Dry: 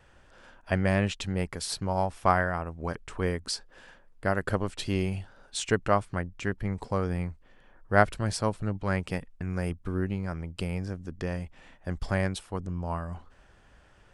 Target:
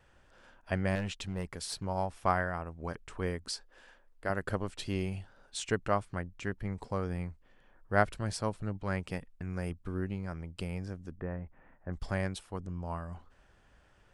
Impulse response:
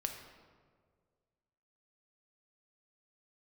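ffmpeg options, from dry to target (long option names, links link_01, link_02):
-filter_complex "[0:a]asettb=1/sr,asplit=3[link_01][link_02][link_03];[link_01]atrim=end=0.954[link_04];[link_02]atrim=start=0.95:end=1.84,asetpts=PTS-STARTPTS,afade=type=in:duration=0.004:curve=qsin,afade=type=out:start_time=0.886:duration=0.004:curve=qsin,asoftclip=type=hard:threshold=-24dB[link_05];[link_03]atrim=start=1.836[link_06];[link_04][link_05]acrossfade=duration=0.004:curve1=hsin:curve2=qsin[link_07];[link_07][link_06]acrossfade=duration=0.004:curve1=qsin:curve2=hsin,asettb=1/sr,asplit=3[link_08][link_09][link_10];[link_08]atrim=end=3.524[link_11];[link_09]atrim=start=3.52:end=4.3,asetpts=PTS-STARTPTS,afade=type=in:duration=0.004:curve=qsin,afade=type=out:start_time=0.776:duration=0.004:curve=qsin,equalizer=frequency=140:width_type=o:width=0.84:gain=-14.5[link_12];[link_10]atrim=start=4.296[link_13];[link_11][link_12]acrossfade=duration=0.004:curve1=hsin:curve2=qsin[link_14];[link_14][link_13]acrossfade=duration=0.004:curve1=qsin:curve2=hsin,asplit=3[link_15][link_16][link_17];[link_15]afade=type=out:start_time=11.15:duration=0.02[link_18];[link_16]lowpass=frequency=1800:width=0.5412,lowpass=frequency=1800:width=1.3066,afade=type=in:start_time=11.15:duration=0.02,afade=type=out:start_time=11.92:duration=0.02[link_19];[link_17]afade=type=in:start_time=11.92:duration=0.02[link_20];[link_18][link_19][link_20]amix=inputs=3:normalize=0,volume=-5.5dB"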